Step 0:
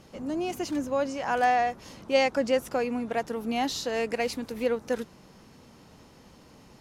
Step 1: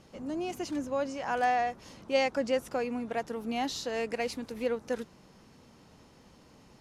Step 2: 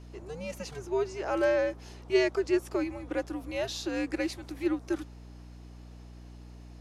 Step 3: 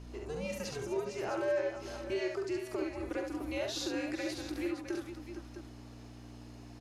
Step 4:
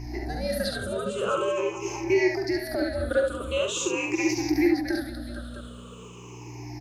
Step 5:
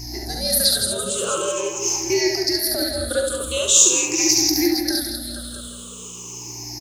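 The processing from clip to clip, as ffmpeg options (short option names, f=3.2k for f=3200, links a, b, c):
-af "lowpass=12k,volume=-4dB"
-af "afreqshift=-160,lowshelf=f=210:t=q:w=1.5:g=-13.5,aeval=exprs='val(0)+0.00501*(sin(2*PI*60*n/s)+sin(2*PI*2*60*n/s)/2+sin(2*PI*3*60*n/s)/3+sin(2*PI*4*60*n/s)/4+sin(2*PI*5*60*n/s)/5)':c=same"
-filter_complex "[0:a]acompressor=threshold=-34dB:ratio=6,asplit=2[a][b];[b]aecho=0:1:41|46|70|460|659:0.266|0.299|0.596|0.299|0.282[c];[a][c]amix=inputs=2:normalize=0"
-af "afftfilt=real='re*pow(10,23/40*sin(2*PI*(0.74*log(max(b,1)*sr/1024/100)/log(2)-(-0.44)*(pts-256)/sr)))':imag='im*pow(10,23/40*sin(2*PI*(0.74*log(max(b,1)*sr/1024/100)/log(2)-(-0.44)*(pts-256)/sr)))':win_size=1024:overlap=0.75,volume=6dB"
-af "aexciter=amount=6.5:drive=6.6:freq=3.5k,aecho=1:1:162:0.355,volume=1dB"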